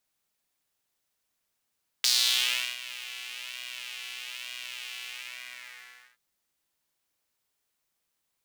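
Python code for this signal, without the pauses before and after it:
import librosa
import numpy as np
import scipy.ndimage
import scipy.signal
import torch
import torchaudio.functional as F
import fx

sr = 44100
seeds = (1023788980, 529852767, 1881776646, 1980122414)

y = fx.sub_patch_pwm(sr, seeds[0], note=47, wave2='saw', interval_st=0, detune_cents=16, level2_db=-9.0, sub_db=-15.0, noise_db=-23.0, kind='highpass', cutoff_hz=1700.0, q=3.0, env_oct=1.5, env_decay_s=0.48, env_sustain_pct=45, attack_ms=2.3, decay_s=0.72, sustain_db=-19.5, release_s=1.16, note_s=2.97, lfo_hz=1.1, width_pct=34, width_swing_pct=6)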